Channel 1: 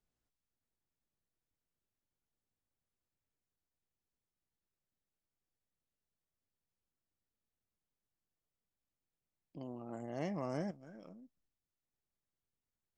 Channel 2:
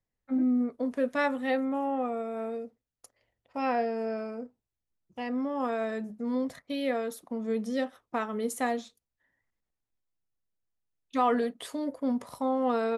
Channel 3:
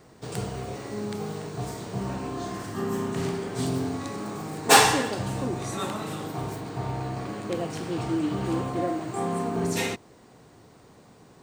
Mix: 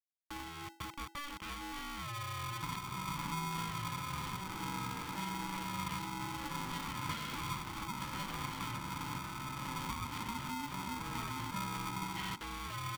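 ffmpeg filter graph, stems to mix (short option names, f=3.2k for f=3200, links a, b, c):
-filter_complex "[1:a]acompressor=threshold=-53dB:ratio=1.5,acrusher=bits=4:dc=4:mix=0:aa=0.000001,volume=0.5dB[a];[2:a]acompressor=threshold=-35dB:ratio=6,adelay=2400,volume=0.5dB[b];[a][b]amix=inputs=2:normalize=0,bandreject=f=50:t=h:w=6,bandreject=f=100:t=h:w=6,bandreject=f=150:t=h:w=6,bandreject=f=200:t=h:w=6,bandreject=f=250:t=h:w=6,bandreject=f=300:t=h:w=6,bandreject=f=350:t=h:w=6,acompressor=threshold=-39dB:ratio=6,volume=0dB,highpass=f=250:w=0.5412,highpass=f=250:w=1.3066,equalizer=f=280:t=q:w=4:g=3,equalizer=f=420:t=q:w=4:g=8,equalizer=f=690:t=q:w=4:g=6,equalizer=f=990:t=q:w=4:g=-3,equalizer=f=1.4k:t=q:w=4:g=-8,equalizer=f=2.6k:t=q:w=4:g=10,lowpass=f=4.1k:w=0.5412,lowpass=f=4.1k:w=1.3066,aeval=exprs='val(0)*sgn(sin(2*PI*580*n/s))':c=same"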